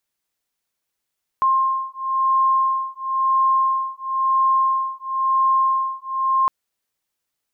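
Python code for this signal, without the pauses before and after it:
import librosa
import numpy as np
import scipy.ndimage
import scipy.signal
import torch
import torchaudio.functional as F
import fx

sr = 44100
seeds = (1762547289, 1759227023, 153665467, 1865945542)

y = fx.two_tone_beats(sr, length_s=5.06, hz=1060.0, beat_hz=0.98, level_db=-19.5)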